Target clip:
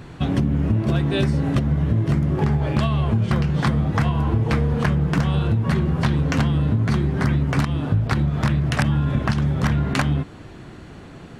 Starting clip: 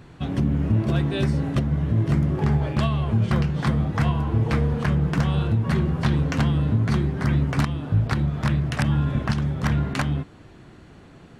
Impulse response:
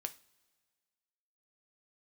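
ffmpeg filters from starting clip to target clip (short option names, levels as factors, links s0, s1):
-af "acompressor=threshold=0.0708:ratio=6,volume=2.24"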